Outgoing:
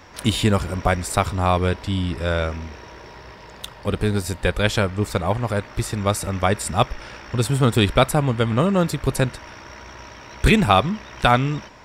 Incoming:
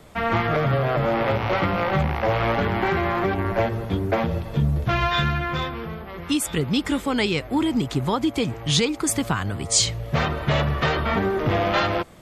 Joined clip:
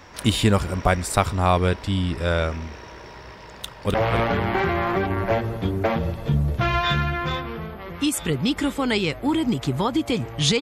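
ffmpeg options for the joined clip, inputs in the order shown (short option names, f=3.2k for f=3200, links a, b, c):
-filter_complex "[0:a]apad=whole_dur=10.61,atrim=end=10.61,atrim=end=3.942[a];[1:a]atrim=start=2.218:end=8.89[b];[a][b]acrossfade=d=0.004:c1=hsin:c2=hsin,asplit=2[c][d];[d]afade=t=in:st=3.55:d=0.01,afade=t=out:st=3.94:d=0.01,aecho=0:1:260|520|780:0.530884|0.106177|0.0212354[e];[c][e]amix=inputs=2:normalize=0"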